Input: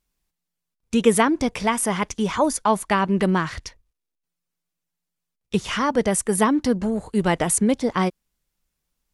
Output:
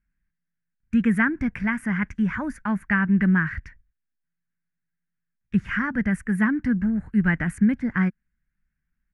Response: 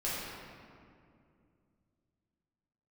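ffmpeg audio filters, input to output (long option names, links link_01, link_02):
-af "firequalizer=gain_entry='entry(210,0);entry(440,-21);entry(1100,-14);entry(1600,5);entry(3500,-27)':delay=0.05:min_phase=1,volume=2.5dB"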